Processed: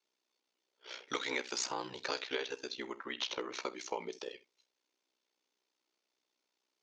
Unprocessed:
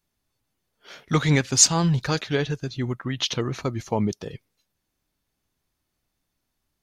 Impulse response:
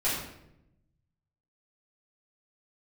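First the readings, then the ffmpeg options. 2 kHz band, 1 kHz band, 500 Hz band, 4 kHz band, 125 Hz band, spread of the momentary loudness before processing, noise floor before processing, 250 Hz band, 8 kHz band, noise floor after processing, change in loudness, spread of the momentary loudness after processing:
-9.0 dB, -10.5 dB, -12.0 dB, -12.0 dB, -38.5 dB, 13 LU, -79 dBFS, -21.0 dB, -21.5 dB, under -85 dBFS, -16.5 dB, 12 LU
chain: -filter_complex "[0:a]highpass=f=350:w=0.5412,highpass=f=350:w=1.3066,equalizer=f=700:t=q:w=4:g=-7,equalizer=f=1.2k:t=q:w=4:g=-4,equalizer=f=1.7k:t=q:w=4:g=-6,lowpass=f=6.6k:w=0.5412,lowpass=f=6.6k:w=1.3066,acrossover=split=640|1900[a][b][c];[a]acompressor=threshold=-43dB:ratio=4[d];[b]acompressor=threshold=-38dB:ratio=4[e];[c]acompressor=threshold=-39dB:ratio=4[f];[d][e][f]amix=inputs=3:normalize=0,asplit=2[g][h];[1:a]atrim=start_sample=2205,atrim=end_sample=3528,asetrate=41895,aresample=44100[i];[h][i]afir=irnorm=-1:irlink=0,volume=-20dB[j];[g][j]amix=inputs=2:normalize=0,aeval=exprs='val(0)*sin(2*PI*31*n/s)':c=same,volume=1dB"

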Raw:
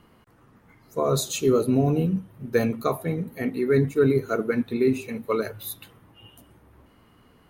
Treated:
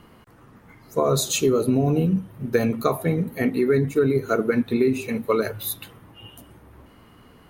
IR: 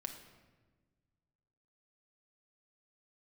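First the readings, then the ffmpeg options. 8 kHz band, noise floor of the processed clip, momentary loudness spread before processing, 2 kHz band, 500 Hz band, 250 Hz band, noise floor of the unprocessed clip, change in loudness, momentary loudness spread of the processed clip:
+5.0 dB, -52 dBFS, 10 LU, +3.0 dB, +1.5 dB, +2.0 dB, -58 dBFS, +2.0 dB, 7 LU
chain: -af "acompressor=threshold=-22dB:ratio=6,volume=6dB"

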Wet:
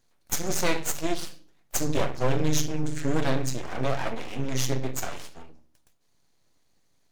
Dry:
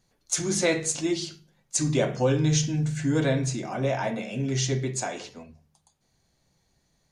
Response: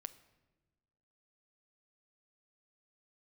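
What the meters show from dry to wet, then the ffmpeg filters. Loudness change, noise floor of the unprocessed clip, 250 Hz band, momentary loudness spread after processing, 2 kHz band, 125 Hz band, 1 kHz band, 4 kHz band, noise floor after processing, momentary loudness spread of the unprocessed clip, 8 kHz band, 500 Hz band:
-3.0 dB, -71 dBFS, -3.5 dB, 8 LU, -1.5 dB, -4.5 dB, +1.5 dB, -2.0 dB, -66 dBFS, 7 LU, -3.0 dB, -3.0 dB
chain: -filter_complex "[0:a]aeval=exprs='0.316*(cos(1*acos(clip(val(0)/0.316,-1,1)))-cos(1*PI/2))+0.0794*(cos(4*acos(clip(val(0)/0.316,-1,1)))-cos(4*PI/2))+0.0316*(cos(8*acos(clip(val(0)/0.316,-1,1)))-cos(8*PI/2))':c=same,asplit=2[a][b];[b]acompressor=threshold=-30dB:ratio=6,volume=-1dB[c];[a][c]amix=inputs=2:normalize=0,aeval=exprs='abs(val(0))':c=same,bandreject=f=50:t=h:w=6,bandreject=f=100:t=h:w=6,bandreject=f=150:t=h:w=6,bandreject=f=200:t=h:w=6[d];[1:a]atrim=start_sample=2205,atrim=end_sample=3528[e];[d][e]afir=irnorm=-1:irlink=0,volume=-1dB"

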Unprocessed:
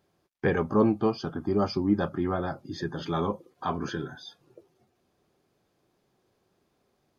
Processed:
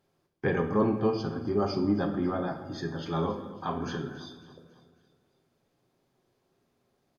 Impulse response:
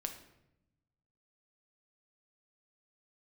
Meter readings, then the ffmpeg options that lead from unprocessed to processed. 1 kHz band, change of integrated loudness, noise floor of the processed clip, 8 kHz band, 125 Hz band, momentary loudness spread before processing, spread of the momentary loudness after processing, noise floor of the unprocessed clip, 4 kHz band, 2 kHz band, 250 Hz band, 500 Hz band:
-2.0 dB, -1.5 dB, -75 dBFS, n/a, -1.0 dB, 11 LU, 10 LU, -73 dBFS, -2.0 dB, -2.0 dB, -1.5 dB, -1.0 dB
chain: -filter_complex "[0:a]aecho=1:1:274|548|822|1096:0.133|0.0667|0.0333|0.0167[a];[1:a]atrim=start_sample=2205,asetrate=37044,aresample=44100[b];[a][b]afir=irnorm=-1:irlink=0,volume=-2dB"

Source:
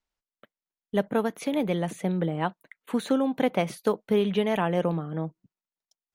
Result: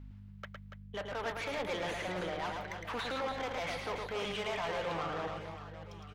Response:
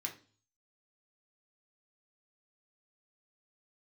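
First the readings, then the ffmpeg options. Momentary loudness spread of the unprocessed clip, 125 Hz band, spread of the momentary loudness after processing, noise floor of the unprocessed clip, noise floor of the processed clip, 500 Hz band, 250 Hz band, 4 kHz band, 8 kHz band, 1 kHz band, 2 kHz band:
7 LU, -13.5 dB, 13 LU, under -85 dBFS, -50 dBFS, -10.5 dB, -18.0 dB, -1.5 dB, -5.5 dB, -5.0 dB, -1.5 dB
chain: -filter_complex "[0:a]aemphasis=mode=production:type=75fm,acrossover=split=6100[a][b];[b]acompressor=threshold=-41dB:ratio=4:attack=1:release=60[c];[a][c]amix=inputs=2:normalize=0,acrossover=split=560 3500:gain=0.2 1 0.1[d][e][f];[d][e][f]amix=inputs=3:normalize=0,areverse,acompressor=threshold=-40dB:ratio=6,areverse,asplit=2[g][h];[h]highpass=f=720:p=1,volume=19dB,asoftclip=type=tanh:threshold=-29.5dB[i];[g][i]amix=inputs=2:normalize=0,lowpass=f=2k:p=1,volume=-6dB,aeval=exprs='val(0)+0.00251*(sin(2*PI*50*n/s)+sin(2*PI*2*50*n/s)/2+sin(2*PI*3*50*n/s)/3+sin(2*PI*4*50*n/s)/4+sin(2*PI*5*50*n/s)/5)':c=same,acrossover=split=5500[j][k];[j]asoftclip=type=tanh:threshold=-39.5dB[l];[l][k]amix=inputs=2:normalize=0,aecho=1:1:110|286|567.6|1018|1739:0.631|0.398|0.251|0.158|0.1,volume=5dB"

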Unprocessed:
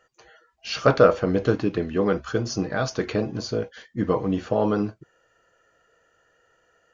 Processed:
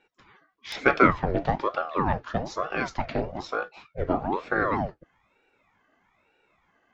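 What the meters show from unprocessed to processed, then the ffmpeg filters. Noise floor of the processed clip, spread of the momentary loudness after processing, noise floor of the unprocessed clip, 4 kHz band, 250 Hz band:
-70 dBFS, 13 LU, -66 dBFS, -6.5 dB, -5.0 dB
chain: -filter_complex "[0:a]highpass=140,lowpass=3.7k,acrossover=split=210|2300[a][b][c];[c]aeval=exprs='(mod(14.1*val(0)+1,2)-1)/14.1':c=same[d];[a][b][d]amix=inputs=3:normalize=0,aeval=exprs='val(0)*sin(2*PI*580*n/s+580*0.7/1.1*sin(2*PI*1.1*n/s))':c=same"

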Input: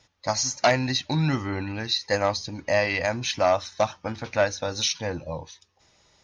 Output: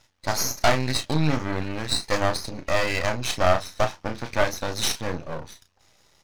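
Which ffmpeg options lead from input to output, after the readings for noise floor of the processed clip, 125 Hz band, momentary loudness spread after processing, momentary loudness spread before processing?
-63 dBFS, +1.0 dB, 9 LU, 9 LU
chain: -filter_complex "[0:a]asplit=2[a][b];[b]adelay=33,volume=-8dB[c];[a][c]amix=inputs=2:normalize=0,aeval=exprs='max(val(0),0)':c=same,volume=4dB"

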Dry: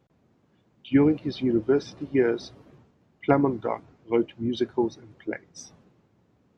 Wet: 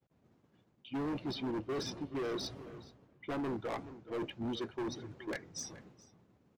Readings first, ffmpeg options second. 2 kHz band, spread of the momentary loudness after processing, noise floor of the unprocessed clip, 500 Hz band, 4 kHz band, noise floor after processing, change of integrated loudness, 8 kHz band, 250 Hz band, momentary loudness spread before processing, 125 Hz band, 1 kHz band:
-9.5 dB, 13 LU, -66 dBFS, -14.5 dB, -2.5 dB, -73 dBFS, -14.0 dB, n/a, -14.0 dB, 15 LU, -12.0 dB, -11.0 dB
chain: -filter_complex "[0:a]agate=range=-33dB:threshold=-58dB:ratio=3:detection=peak,areverse,acompressor=threshold=-31dB:ratio=4,areverse,asoftclip=type=hard:threshold=-35.5dB,asplit=2[a][b];[b]adelay=425.7,volume=-15dB,highshelf=f=4k:g=-9.58[c];[a][c]amix=inputs=2:normalize=0,volume=1.5dB"

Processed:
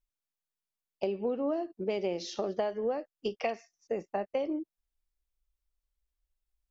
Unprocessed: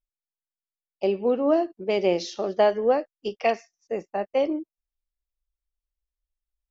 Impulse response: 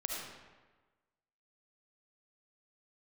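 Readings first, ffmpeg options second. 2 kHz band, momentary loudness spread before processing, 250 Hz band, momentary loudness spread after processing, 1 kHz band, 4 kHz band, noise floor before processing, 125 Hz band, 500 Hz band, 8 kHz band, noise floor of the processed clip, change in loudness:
-9.5 dB, 12 LU, -7.5 dB, 6 LU, -10.0 dB, -7.5 dB, under -85 dBFS, -6.0 dB, -9.0 dB, n/a, under -85 dBFS, -9.0 dB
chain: -af "lowshelf=f=330:g=3.5,acompressor=threshold=-29dB:ratio=6"

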